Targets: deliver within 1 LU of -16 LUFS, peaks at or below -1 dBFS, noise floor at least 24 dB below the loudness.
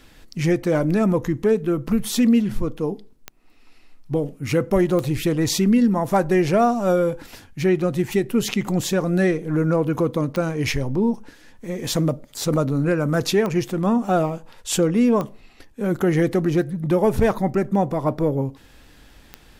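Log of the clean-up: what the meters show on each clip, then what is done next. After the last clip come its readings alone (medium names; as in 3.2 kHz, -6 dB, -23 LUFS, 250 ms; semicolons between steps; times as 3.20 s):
clicks found 6; loudness -21.0 LUFS; peak level -7.0 dBFS; loudness target -16.0 LUFS
-> de-click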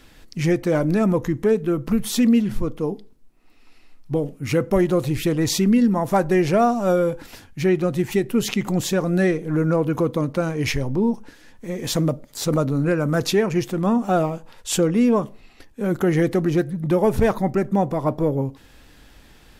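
clicks found 0; loudness -21.0 LUFS; peak level -7.0 dBFS; loudness target -16.0 LUFS
-> trim +5 dB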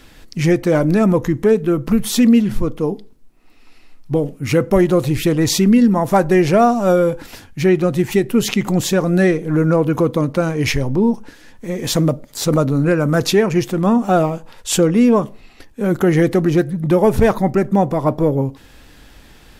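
loudness -16.0 LUFS; peak level -2.0 dBFS; noise floor -45 dBFS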